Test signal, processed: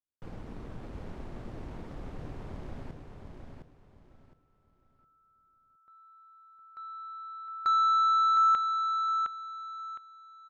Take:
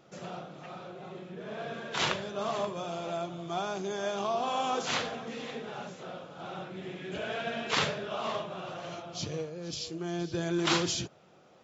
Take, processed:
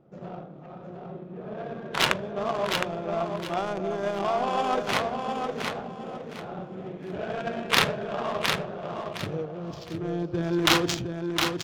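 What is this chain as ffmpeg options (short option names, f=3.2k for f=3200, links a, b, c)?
-af "crystalizer=i=5.5:c=0,adynamicsmooth=sensitivity=1:basefreq=520,aecho=1:1:712|1424|2136|2848:0.562|0.152|0.041|0.0111,volume=4.5dB"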